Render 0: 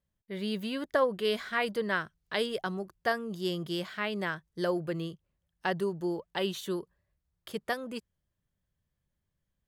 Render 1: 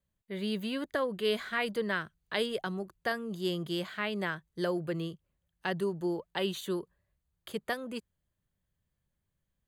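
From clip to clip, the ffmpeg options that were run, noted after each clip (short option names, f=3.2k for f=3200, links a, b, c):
-filter_complex "[0:a]bandreject=f=5.4k:w=5,acrossover=split=370|1600|2700[a][b][c][d];[b]alimiter=level_in=2.5dB:limit=-24dB:level=0:latency=1:release=264,volume=-2.5dB[e];[a][e][c][d]amix=inputs=4:normalize=0"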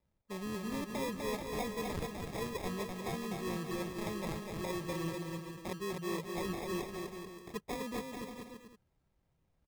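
-af "areverse,acompressor=threshold=-41dB:ratio=5,areverse,acrusher=samples=30:mix=1:aa=0.000001,aecho=1:1:250|437.5|578.1|683.6|762.7:0.631|0.398|0.251|0.158|0.1,volume=3.5dB"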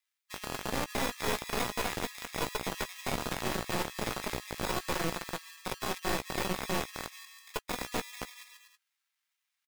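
-filter_complex "[0:a]acrossover=split=1500[a][b];[a]acrusher=bits=3:dc=4:mix=0:aa=0.000001[c];[c][b]amix=inputs=2:normalize=0,asplit=2[d][e];[e]adelay=16,volume=-11dB[f];[d][f]amix=inputs=2:normalize=0,volume=6.5dB"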